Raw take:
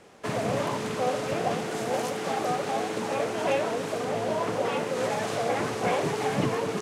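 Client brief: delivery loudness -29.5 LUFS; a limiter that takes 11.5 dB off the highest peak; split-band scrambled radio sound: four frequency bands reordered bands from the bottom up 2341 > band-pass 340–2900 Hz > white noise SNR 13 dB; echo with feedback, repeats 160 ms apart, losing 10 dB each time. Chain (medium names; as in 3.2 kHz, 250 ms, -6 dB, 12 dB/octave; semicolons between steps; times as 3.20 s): peak limiter -25 dBFS; feedback delay 160 ms, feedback 32%, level -10 dB; four frequency bands reordered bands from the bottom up 2341; band-pass 340–2900 Hz; white noise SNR 13 dB; trim +9.5 dB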